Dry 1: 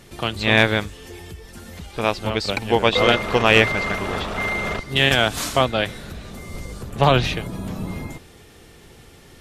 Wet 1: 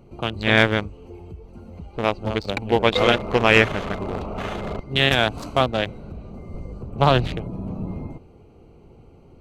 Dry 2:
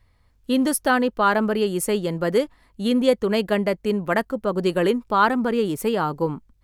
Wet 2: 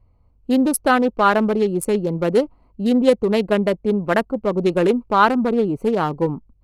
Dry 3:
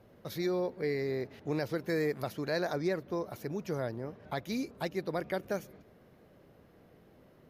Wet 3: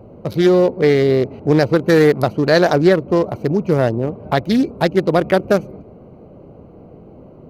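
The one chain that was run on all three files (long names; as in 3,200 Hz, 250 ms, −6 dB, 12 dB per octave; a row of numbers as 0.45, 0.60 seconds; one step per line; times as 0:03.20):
adaptive Wiener filter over 25 samples
highs frequency-modulated by the lows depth 0.13 ms
normalise the peak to −1.5 dBFS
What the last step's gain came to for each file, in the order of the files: −0.5, +4.0, +20.0 decibels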